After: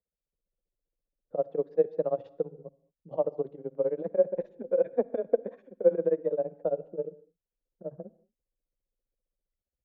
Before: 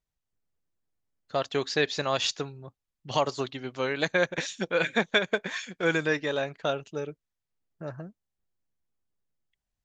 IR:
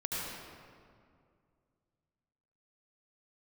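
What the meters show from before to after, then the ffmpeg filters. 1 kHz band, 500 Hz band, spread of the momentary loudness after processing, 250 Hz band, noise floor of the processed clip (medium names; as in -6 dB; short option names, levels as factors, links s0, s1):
-10.5 dB, +2.5 dB, 15 LU, -5.5 dB, under -85 dBFS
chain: -filter_complex "[0:a]tremolo=f=15:d=0.95,lowpass=f=500:t=q:w=5,afreqshift=21,asplit=2[s0][s1];[1:a]atrim=start_sample=2205,afade=t=out:st=0.39:d=0.01,atrim=end_sample=17640,asetrate=66150,aresample=44100[s2];[s1][s2]afir=irnorm=-1:irlink=0,volume=0.1[s3];[s0][s3]amix=inputs=2:normalize=0,volume=0.596"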